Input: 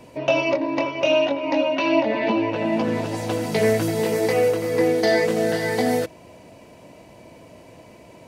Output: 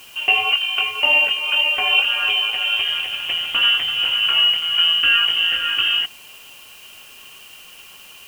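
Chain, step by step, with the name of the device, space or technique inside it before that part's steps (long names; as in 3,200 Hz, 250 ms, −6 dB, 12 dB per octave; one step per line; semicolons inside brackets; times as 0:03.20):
scrambled radio voice (band-pass filter 300–2,700 Hz; voice inversion scrambler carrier 3,400 Hz; white noise bed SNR 26 dB)
level +3.5 dB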